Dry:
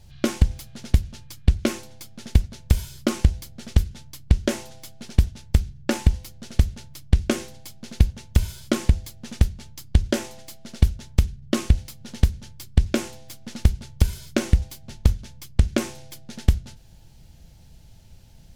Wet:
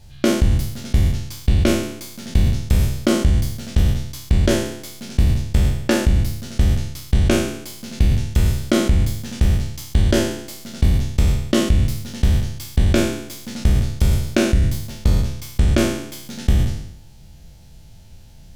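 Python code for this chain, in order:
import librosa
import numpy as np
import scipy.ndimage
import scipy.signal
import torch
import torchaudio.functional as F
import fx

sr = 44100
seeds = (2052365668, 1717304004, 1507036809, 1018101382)

p1 = fx.spec_trails(x, sr, decay_s=0.81)
p2 = fx.over_compress(p1, sr, threshold_db=-17.0, ratio=-1.0)
p3 = p1 + (p2 * librosa.db_to_amplitude(-1.5))
y = p3 * librosa.db_to_amplitude(-4.0)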